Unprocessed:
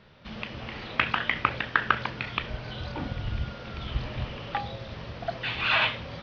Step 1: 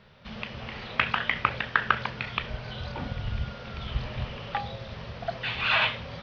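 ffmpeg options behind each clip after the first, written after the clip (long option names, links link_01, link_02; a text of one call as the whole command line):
ffmpeg -i in.wav -af "equalizer=frequency=310:width=6.8:gain=-13" out.wav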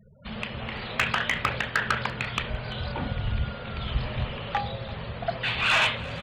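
ffmpeg -i in.wav -af "afftfilt=real='re*gte(hypot(re,im),0.00447)':imag='im*gte(hypot(re,im),0.00447)':win_size=1024:overlap=0.75,asoftclip=type=tanh:threshold=-18.5dB,aecho=1:1:340:0.0944,volume=4dB" out.wav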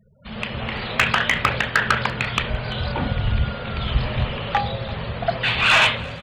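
ffmpeg -i in.wav -af "dynaudnorm=framelen=140:gausssize=5:maxgain=9.5dB,volume=-2.5dB" out.wav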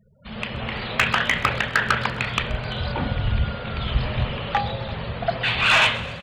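ffmpeg -i in.wav -filter_complex "[0:a]asplit=5[link_01][link_02][link_03][link_04][link_05];[link_02]adelay=129,afreqshift=32,volume=-18dB[link_06];[link_03]adelay=258,afreqshift=64,volume=-23.7dB[link_07];[link_04]adelay=387,afreqshift=96,volume=-29.4dB[link_08];[link_05]adelay=516,afreqshift=128,volume=-35dB[link_09];[link_01][link_06][link_07][link_08][link_09]amix=inputs=5:normalize=0,volume=-1.5dB" out.wav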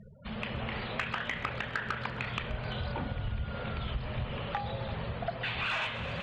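ffmpeg -i in.wav -af "areverse,acompressor=mode=upward:threshold=-22dB:ratio=2.5,areverse,aemphasis=mode=reproduction:type=50fm,acompressor=threshold=-25dB:ratio=4,volume=-6.5dB" out.wav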